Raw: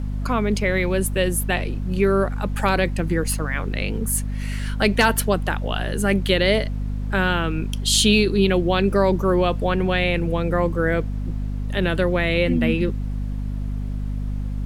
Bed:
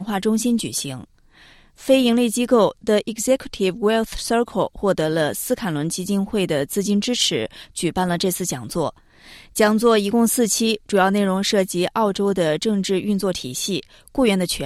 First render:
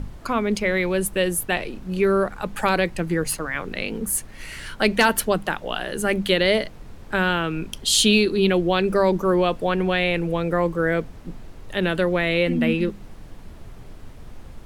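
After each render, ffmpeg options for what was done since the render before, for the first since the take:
-af "bandreject=f=50:t=h:w=6,bandreject=f=100:t=h:w=6,bandreject=f=150:t=h:w=6,bandreject=f=200:t=h:w=6,bandreject=f=250:t=h:w=6"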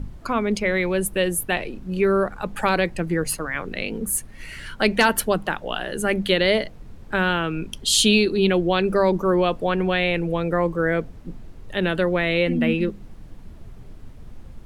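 -af "afftdn=nr=6:nf=-41"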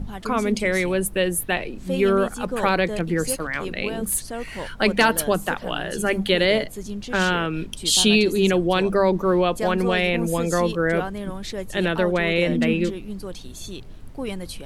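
-filter_complex "[1:a]volume=0.224[s0];[0:a][s0]amix=inputs=2:normalize=0"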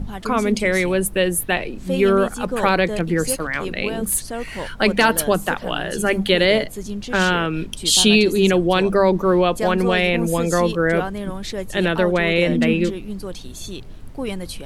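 -af "volume=1.41,alimiter=limit=0.708:level=0:latency=1"

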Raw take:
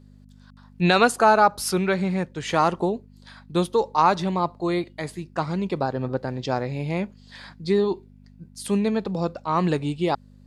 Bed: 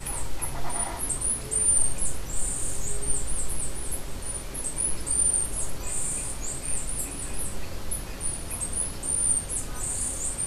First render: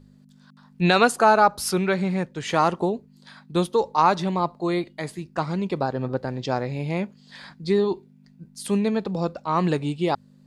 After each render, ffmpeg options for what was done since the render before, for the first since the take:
-af "bandreject=f=50:t=h:w=4,bandreject=f=100:t=h:w=4"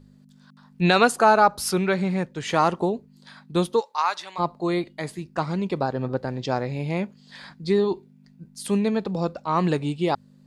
-filter_complex "[0:a]asplit=3[s0][s1][s2];[s0]afade=t=out:st=3.79:d=0.02[s3];[s1]highpass=1200,afade=t=in:st=3.79:d=0.02,afade=t=out:st=4.38:d=0.02[s4];[s2]afade=t=in:st=4.38:d=0.02[s5];[s3][s4][s5]amix=inputs=3:normalize=0"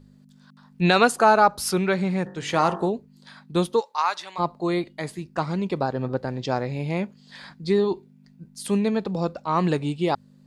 -filter_complex "[0:a]asplit=3[s0][s1][s2];[s0]afade=t=out:st=2.25:d=0.02[s3];[s1]bandreject=f=48.3:t=h:w=4,bandreject=f=96.6:t=h:w=4,bandreject=f=144.9:t=h:w=4,bandreject=f=193.2:t=h:w=4,bandreject=f=241.5:t=h:w=4,bandreject=f=289.8:t=h:w=4,bandreject=f=338.1:t=h:w=4,bandreject=f=386.4:t=h:w=4,bandreject=f=434.7:t=h:w=4,bandreject=f=483:t=h:w=4,bandreject=f=531.3:t=h:w=4,bandreject=f=579.6:t=h:w=4,bandreject=f=627.9:t=h:w=4,bandreject=f=676.2:t=h:w=4,bandreject=f=724.5:t=h:w=4,bandreject=f=772.8:t=h:w=4,bandreject=f=821.1:t=h:w=4,bandreject=f=869.4:t=h:w=4,bandreject=f=917.7:t=h:w=4,bandreject=f=966:t=h:w=4,bandreject=f=1014.3:t=h:w=4,bandreject=f=1062.6:t=h:w=4,bandreject=f=1110.9:t=h:w=4,bandreject=f=1159.2:t=h:w=4,bandreject=f=1207.5:t=h:w=4,bandreject=f=1255.8:t=h:w=4,bandreject=f=1304.1:t=h:w=4,bandreject=f=1352.4:t=h:w=4,bandreject=f=1400.7:t=h:w=4,bandreject=f=1449:t=h:w=4,bandreject=f=1497.3:t=h:w=4,bandreject=f=1545.6:t=h:w=4,bandreject=f=1593.9:t=h:w=4,bandreject=f=1642.2:t=h:w=4,bandreject=f=1690.5:t=h:w=4,bandreject=f=1738.8:t=h:w=4,bandreject=f=1787.1:t=h:w=4,bandreject=f=1835.4:t=h:w=4,bandreject=f=1883.7:t=h:w=4,afade=t=in:st=2.25:d=0.02,afade=t=out:st=2.87:d=0.02[s4];[s2]afade=t=in:st=2.87:d=0.02[s5];[s3][s4][s5]amix=inputs=3:normalize=0"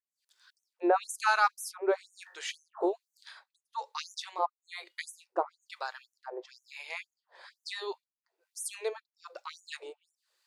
-filter_complex "[0:a]acrossover=split=1100[s0][s1];[s0]aeval=exprs='val(0)*(1-1/2+1/2*cos(2*PI*1.1*n/s))':c=same[s2];[s1]aeval=exprs='val(0)*(1-1/2-1/2*cos(2*PI*1.1*n/s))':c=same[s3];[s2][s3]amix=inputs=2:normalize=0,afftfilt=real='re*gte(b*sr/1024,310*pow(5900/310,0.5+0.5*sin(2*PI*2*pts/sr)))':imag='im*gte(b*sr/1024,310*pow(5900/310,0.5+0.5*sin(2*PI*2*pts/sr)))':win_size=1024:overlap=0.75"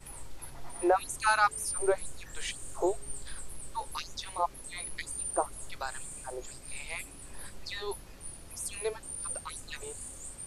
-filter_complex "[1:a]volume=0.2[s0];[0:a][s0]amix=inputs=2:normalize=0"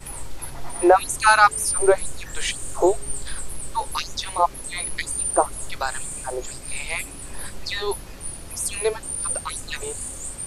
-af "volume=3.55"

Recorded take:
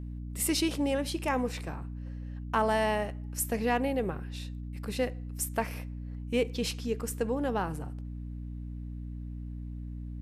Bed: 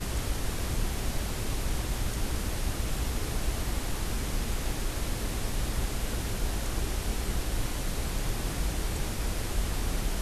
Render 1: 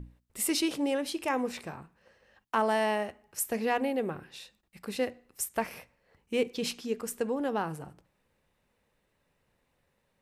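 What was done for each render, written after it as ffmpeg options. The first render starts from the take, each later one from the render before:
-af "bandreject=f=60:t=h:w=6,bandreject=f=120:t=h:w=6,bandreject=f=180:t=h:w=6,bandreject=f=240:t=h:w=6,bandreject=f=300:t=h:w=6"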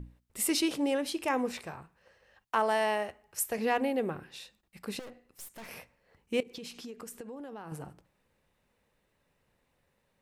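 -filter_complex "[0:a]asettb=1/sr,asplit=3[s0][s1][s2];[s0]atrim=end=1.574[s3];[s1]atrim=start=1.57:end=3.58,asetpts=PTS-STARTPTS,afade=t=in:d=0.004:c=qsin,afade=t=out:st=2.006:d=0.004:c=qsin,equalizer=f=240:w=1.5:g=-7[s4];[s2]atrim=start=3.576[s5];[s3][s4]acrossfade=d=0.004:c1=hsin:c2=qsin[s6];[s6][s5]acrossfade=d=0.004:c1=qsin:c2=hsin,asettb=1/sr,asplit=3[s7][s8][s9];[s7]atrim=end=4.994[s10];[s8]atrim=start=4.99:end=5.69,asetpts=PTS-STARTPTS,afade=t=in:d=0.004:c=qsin,afade=t=out:st=0.696:d=0.004:c=qsin,aeval=exprs='(tanh(158*val(0)+0.5)-tanh(0.5))/158':c=same[s11];[s9]atrim=start=5.686[s12];[s10][s11]acrossfade=d=0.004:c1=hsin:c2=qsin[s13];[s13][s12]acrossfade=d=0.004:c1=qsin:c2=hsin,asettb=1/sr,asplit=3[s14][s15][s16];[s14]atrim=end=6.404[s17];[s15]atrim=start=6.4:end=7.72,asetpts=PTS-STARTPTS,afade=t=in:d=0.004:c=qsin,afade=t=out:st=1.316:d=0.004:c=qsin,acompressor=threshold=0.0112:ratio=16:attack=3.2:release=140:knee=1:detection=peak[s18];[s16]atrim=start=7.716[s19];[s17][s18]acrossfade=d=0.004:c1=hsin:c2=qsin[s20];[s20][s19]acrossfade=d=0.004:c1=qsin:c2=hsin"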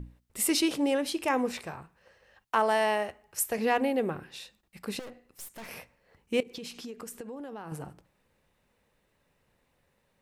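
-af "volume=1.33"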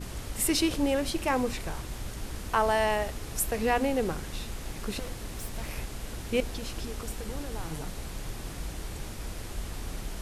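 -filter_complex "[1:a]volume=0.473[s0];[0:a][s0]amix=inputs=2:normalize=0"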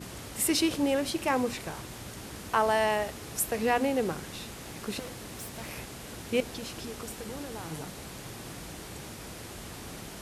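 -af "highpass=110"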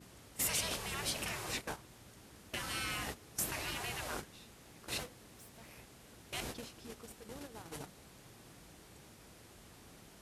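-af "agate=range=0.178:threshold=0.0158:ratio=16:detection=peak,afftfilt=real='re*lt(hypot(re,im),0.0631)':imag='im*lt(hypot(re,im),0.0631)':win_size=1024:overlap=0.75"

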